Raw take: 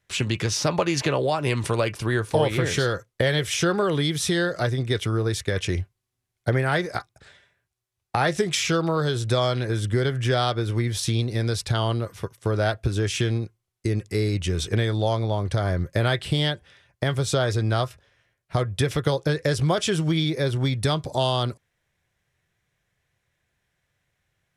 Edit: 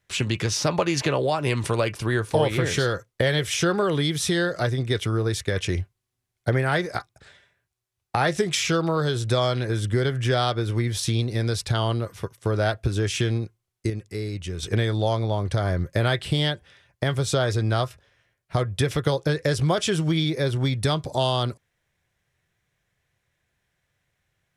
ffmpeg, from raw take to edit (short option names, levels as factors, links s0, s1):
-filter_complex "[0:a]asplit=3[s0][s1][s2];[s0]atrim=end=13.902[s3];[s1]atrim=start=13.898:end=14.632,asetpts=PTS-STARTPTS,volume=0.473[s4];[s2]atrim=start=14.628[s5];[s3][s4]acrossfade=d=0.004:c1=hsin:c2=hsin[s6];[s6][s5]acrossfade=d=0.004:c1=hsin:c2=hsin"